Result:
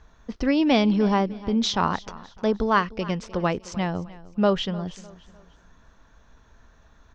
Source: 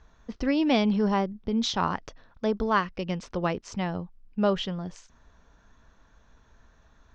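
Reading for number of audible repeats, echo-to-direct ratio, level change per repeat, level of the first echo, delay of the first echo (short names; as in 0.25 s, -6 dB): 2, -18.5 dB, -8.5 dB, -19.0 dB, 0.303 s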